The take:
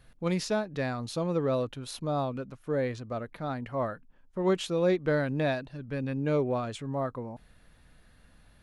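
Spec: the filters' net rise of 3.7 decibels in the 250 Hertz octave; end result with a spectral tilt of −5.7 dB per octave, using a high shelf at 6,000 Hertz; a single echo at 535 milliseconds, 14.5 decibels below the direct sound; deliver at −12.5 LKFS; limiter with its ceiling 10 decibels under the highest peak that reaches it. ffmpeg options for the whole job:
ffmpeg -i in.wav -af "equalizer=frequency=250:width_type=o:gain=5,highshelf=frequency=6000:gain=8.5,alimiter=limit=-23.5dB:level=0:latency=1,aecho=1:1:535:0.188,volume=20.5dB" out.wav

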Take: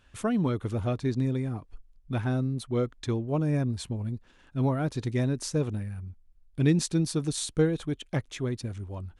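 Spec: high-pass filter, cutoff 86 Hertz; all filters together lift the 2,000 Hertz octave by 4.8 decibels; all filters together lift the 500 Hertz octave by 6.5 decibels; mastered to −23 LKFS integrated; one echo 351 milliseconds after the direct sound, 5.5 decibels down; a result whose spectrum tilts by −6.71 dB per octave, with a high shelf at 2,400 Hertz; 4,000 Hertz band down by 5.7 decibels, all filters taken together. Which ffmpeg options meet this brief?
ffmpeg -i in.wav -af "highpass=86,equalizer=frequency=500:width_type=o:gain=7.5,equalizer=frequency=2000:width_type=o:gain=8.5,highshelf=frequency=2400:gain=-3,equalizer=frequency=4000:width_type=o:gain=-6.5,aecho=1:1:351:0.531,volume=3dB" out.wav

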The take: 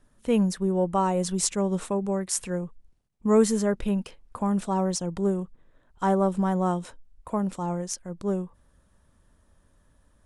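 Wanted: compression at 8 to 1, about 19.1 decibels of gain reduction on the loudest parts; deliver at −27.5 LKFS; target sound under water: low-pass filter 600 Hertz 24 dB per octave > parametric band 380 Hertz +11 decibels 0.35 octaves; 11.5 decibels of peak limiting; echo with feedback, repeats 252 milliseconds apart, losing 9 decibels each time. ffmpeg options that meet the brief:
ffmpeg -i in.wav -af "acompressor=threshold=-35dB:ratio=8,alimiter=level_in=7dB:limit=-24dB:level=0:latency=1,volume=-7dB,lowpass=frequency=600:width=0.5412,lowpass=frequency=600:width=1.3066,equalizer=frequency=380:width_type=o:width=0.35:gain=11,aecho=1:1:252|504|756|1008:0.355|0.124|0.0435|0.0152,volume=10dB" out.wav

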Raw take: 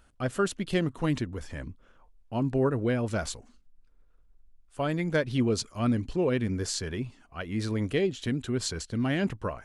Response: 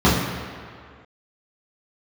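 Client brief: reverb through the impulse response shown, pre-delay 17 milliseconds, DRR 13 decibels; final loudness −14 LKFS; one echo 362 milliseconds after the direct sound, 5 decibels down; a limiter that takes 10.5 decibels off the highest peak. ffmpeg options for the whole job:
-filter_complex "[0:a]alimiter=level_in=1dB:limit=-24dB:level=0:latency=1,volume=-1dB,aecho=1:1:362:0.562,asplit=2[link_01][link_02];[1:a]atrim=start_sample=2205,adelay=17[link_03];[link_02][link_03]afir=irnorm=-1:irlink=0,volume=-36.5dB[link_04];[link_01][link_04]amix=inputs=2:normalize=0,volume=18dB"

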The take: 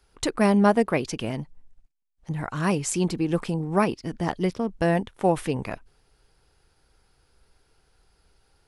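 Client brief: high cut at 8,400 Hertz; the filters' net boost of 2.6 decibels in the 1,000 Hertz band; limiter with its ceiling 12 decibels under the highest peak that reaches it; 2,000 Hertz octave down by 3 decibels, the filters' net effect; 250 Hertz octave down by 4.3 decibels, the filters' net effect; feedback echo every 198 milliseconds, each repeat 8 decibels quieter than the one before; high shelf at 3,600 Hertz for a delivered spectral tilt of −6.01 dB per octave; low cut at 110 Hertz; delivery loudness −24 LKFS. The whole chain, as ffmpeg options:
ffmpeg -i in.wav -af "highpass=110,lowpass=8400,equalizer=frequency=250:width_type=o:gain=-6,equalizer=frequency=1000:width_type=o:gain=5,equalizer=frequency=2000:width_type=o:gain=-4,highshelf=frequency=3600:gain=-6,alimiter=limit=-19dB:level=0:latency=1,aecho=1:1:198|396|594|792|990:0.398|0.159|0.0637|0.0255|0.0102,volume=6dB" out.wav

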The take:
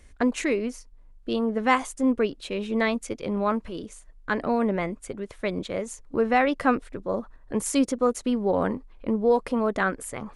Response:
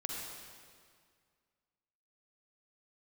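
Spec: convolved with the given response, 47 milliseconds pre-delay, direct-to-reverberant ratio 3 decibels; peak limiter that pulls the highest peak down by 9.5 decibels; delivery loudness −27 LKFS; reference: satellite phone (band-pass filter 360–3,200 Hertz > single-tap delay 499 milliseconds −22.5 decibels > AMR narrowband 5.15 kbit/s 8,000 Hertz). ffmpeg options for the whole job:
-filter_complex "[0:a]alimiter=limit=-17dB:level=0:latency=1,asplit=2[link_01][link_02];[1:a]atrim=start_sample=2205,adelay=47[link_03];[link_02][link_03]afir=irnorm=-1:irlink=0,volume=-4.5dB[link_04];[link_01][link_04]amix=inputs=2:normalize=0,highpass=360,lowpass=3200,aecho=1:1:499:0.075,volume=5dB" -ar 8000 -c:a libopencore_amrnb -b:a 5150

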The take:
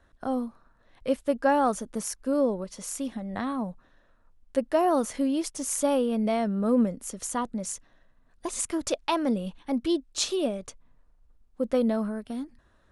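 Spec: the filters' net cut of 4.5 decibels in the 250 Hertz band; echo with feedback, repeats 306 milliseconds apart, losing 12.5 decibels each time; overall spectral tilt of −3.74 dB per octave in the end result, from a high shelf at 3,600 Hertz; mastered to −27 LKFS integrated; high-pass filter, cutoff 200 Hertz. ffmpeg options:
ffmpeg -i in.wav -af "highpass=200,equalizer=frequency=250:width_type=o:gain=-3.5,highshelf=frequency=3600:gain=-4,aecho=1:1:306|612|918:0.237|0.0569|0.0137,volume=3dB" out.wav

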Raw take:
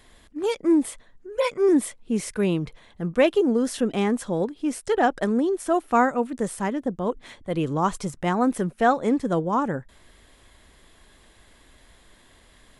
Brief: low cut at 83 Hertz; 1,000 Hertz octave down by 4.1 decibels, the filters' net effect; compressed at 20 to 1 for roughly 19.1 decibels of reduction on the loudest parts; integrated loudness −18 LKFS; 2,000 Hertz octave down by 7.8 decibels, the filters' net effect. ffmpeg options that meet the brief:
ffmpeg -i in.wav -af "highpass=83,equalizer=frequency=1000:width_type=o:gain=-4,equalizer=frequency=2000:width_type=o:gain=-9,acompressor=threshold=-35dB:ratio=20,volume=22.5dB" out.wav

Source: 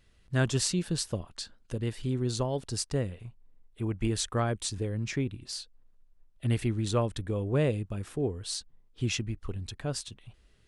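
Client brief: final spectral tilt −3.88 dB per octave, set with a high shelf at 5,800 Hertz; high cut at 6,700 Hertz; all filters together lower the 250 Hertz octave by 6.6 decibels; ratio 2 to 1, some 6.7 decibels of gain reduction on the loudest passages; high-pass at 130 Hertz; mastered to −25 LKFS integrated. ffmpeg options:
ffmpeg -i in.wav -af "highpass=130,lowpass=6700,equalizer=frequency=250:width_type=o:gain=-8.5,highshelf=frequency=5800:gain=5.5,acompressor=threshold=-37dB:ratio=2,volume=14dB" out.wav

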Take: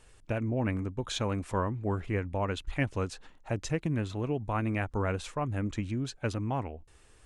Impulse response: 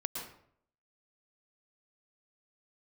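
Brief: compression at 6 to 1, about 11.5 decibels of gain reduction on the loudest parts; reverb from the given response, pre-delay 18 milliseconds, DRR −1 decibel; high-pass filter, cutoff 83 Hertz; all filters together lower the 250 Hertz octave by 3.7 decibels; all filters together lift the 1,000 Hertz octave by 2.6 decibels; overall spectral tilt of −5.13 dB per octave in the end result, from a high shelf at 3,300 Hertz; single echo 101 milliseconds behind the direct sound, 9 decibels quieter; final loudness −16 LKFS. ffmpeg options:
-filter_complex "[0:a]highpass=83,equalizer=frequency=250:width_type=o:gain=-5,equalizer=frequency=1000:width_type=o:gain=3,highshelf=frequency=3300:gain=4,acompressor=threshold=-37dB:ratio=6,aecho=1:1:101:0.355,asplit=2[link_01][link_02];[1:a]atrim=start_sample=2205,adelay=18[link_03];[link_02][link_03]afir=irnorm=-1:irlink=0,volume=-1dB[link_04];[link_01][link_04]amix=inputs=2:normalize=0,volume=21.5dB"

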